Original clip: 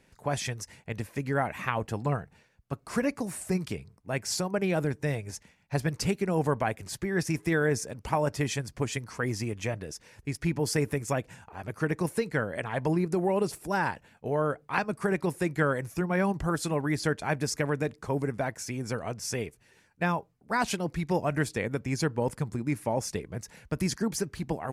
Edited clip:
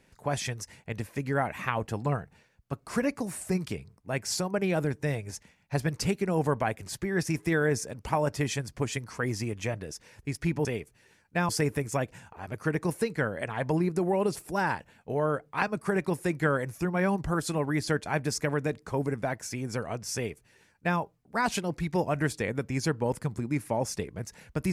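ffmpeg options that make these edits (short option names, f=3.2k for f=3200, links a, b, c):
-filter_complex "[0:a]asplit=3[a][b][c];[a]atrim=end=10.652[d];[b]atrim=start=19.308:end=20.152[e];[c]atrim=start=10.648[f];[d][e]acrossfade=d=0.004:c1=hsin:c2=hsin[g];[g][f]acrossfade=d=0.004:c1=hsin:c2=hsin"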